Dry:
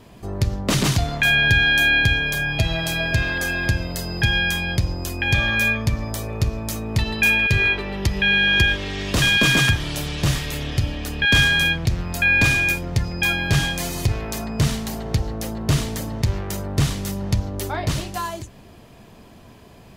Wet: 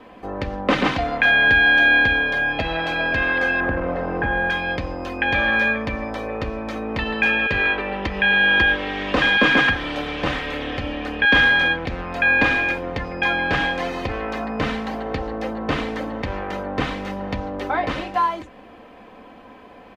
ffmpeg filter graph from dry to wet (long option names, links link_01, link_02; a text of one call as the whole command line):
ffmpeg -i in.wav -filter_complex "[0:a]asettb=1/sr,asplit=3[link_01][link_02][link_03];[link_01]atrim=end=3.604[link_04];[link_02]atrim=start=3.6:end=4.5,asetpts=PTS-STARTPTS,afade=type=in:duration=0.004:curve=qsin,afade=type=out:start_time=0.896:duration=0.004:curve=qsin,aeval=exprs='val(0)+0.5*0.0708*sgn(val(0))':channel_layout=same,lowpass=1200[link_05];[link_03]atrim=start=4.496[link_06];[link_04][link_05]acrossfade=duration=0.004:curve1=hsin:curve2=qsin[link_07];[link_07][link_06]acrossfade=duration=0.004:curve1=qsin:curve2=hsin,acrossover=split=6100[link_08][link_09];[link_09]acompressor=threshold=-46dB:ratio=4:attack=1:release=60[link_10];[link_08][link_10]amix=inputs=2:normalize=0,acrossover=split=290 2800:gain=0.178 1 0.0708[link_11][link_12][link_13];[link_11][link_12][link_13]amix=inputs=3:normalize=0,aecho=1:1:3.9:0.55,volume=6dB" out.wav